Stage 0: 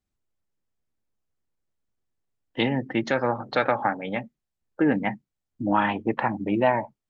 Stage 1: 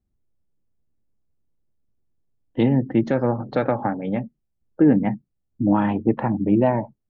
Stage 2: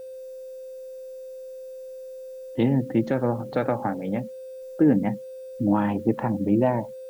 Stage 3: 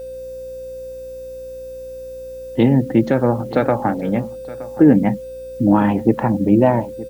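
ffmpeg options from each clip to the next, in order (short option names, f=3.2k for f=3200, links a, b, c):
-af "tiltshelf=f=710:g=10"
-af "aeval=exprs='val(0)+0.0224*sin(2*PI*520*n/s)':c=same,acrusher=bits=8:mix=0:aa=0.000001,volume=-3dB"
-af "aeval=exprs='val(0)+0.00224*(sin(2*PI*60*n/s)+sin(2*PI*2*60*n/s)/2+sin(2*PI*3*60*n/s)/3+sin(2*PI*4*60*n/s)/4+sin(2*PI*5*60*n/s)/5)':c=same,aecho=1:1:920:0.126,volume=7.5dB"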